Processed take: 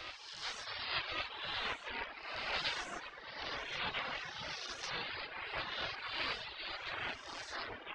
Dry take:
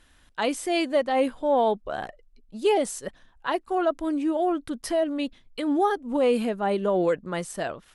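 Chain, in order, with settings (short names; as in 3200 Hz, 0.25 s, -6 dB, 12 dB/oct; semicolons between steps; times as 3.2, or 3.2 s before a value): spectral swells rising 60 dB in 1.57 s; elliptic low-pass 4800 Hz, stop band 80 dB; notch 2700 Hz, Q 16; spectral gate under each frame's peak -30 dB weak; Chebyshev high-pass 200 Hz, order 10; notches 50/100/150/200/250/300/350/400/450 Hz; ring modulator 340 Hz; reverb RT60 0.90 s, pre-delay 62 ms, DRR 9.5 dB; echoes that change speed 0.41 s, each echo -5 st, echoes 3; reverse echo 1.11 s -10 dB; reverb removal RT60 1.6 s; gain +7.5 dB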